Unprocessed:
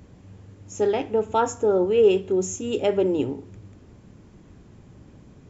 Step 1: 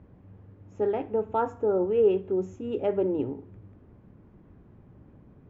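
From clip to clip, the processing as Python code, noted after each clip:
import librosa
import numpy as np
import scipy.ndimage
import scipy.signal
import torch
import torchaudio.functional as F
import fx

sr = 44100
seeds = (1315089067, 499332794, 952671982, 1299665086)

y = scipy.signal.sosfilt(scipy.signal.butter(2, 1600.0, 'lowpass', fs=sr, output='sos'), x)
y = y * 10.0 ** (-4.5 / 20.0)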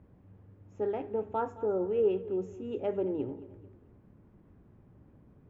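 y = fx.echo_feedback(x, sr, ms=219, feedback_pct=41, wet_db=-17.0)
y = y * 10.0 ** (-5.5 / 20.0)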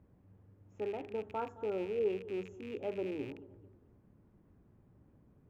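y = fx.rattle_buzz(x, sr, strikes_db=-44.0, level_db=-35.0)
y = y * 10.0 ** (-6.0 / 20.0)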